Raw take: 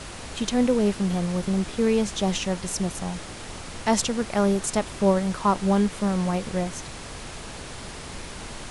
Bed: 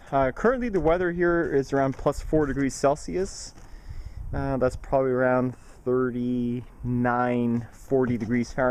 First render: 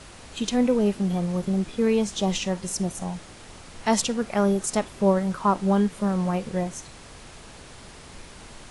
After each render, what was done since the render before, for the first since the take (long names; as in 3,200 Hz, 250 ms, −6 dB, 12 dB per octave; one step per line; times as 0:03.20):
noise reduction from a noise print 7 dB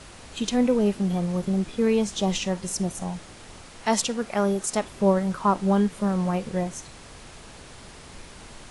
0:03.67–0:04.84: low-shelf EQ 200 Hz −6 dB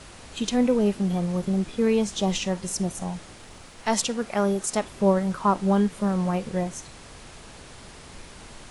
0:03.37–0:03.96: gain on one half-wave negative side −3 dB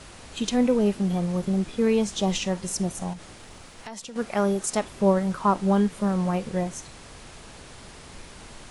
0:03.13–0:04.16: downward compressor, threshold −36 dBFS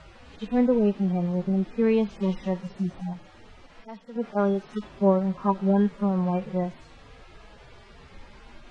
harmonic-percussive split with one part muted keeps harmonic
low-pass filter 3,400 Hz 12 dB per octave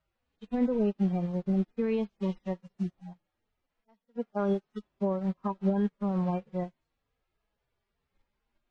brickwall limiter −17.5 dBFS, peak gain reduction 8 dB
expander for the loud parts 2.5 to 1, over −44 dBFS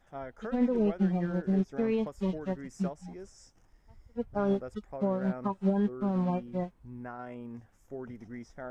mix in bed −18.5 dB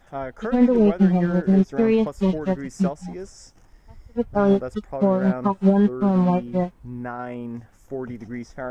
level +10.5 dB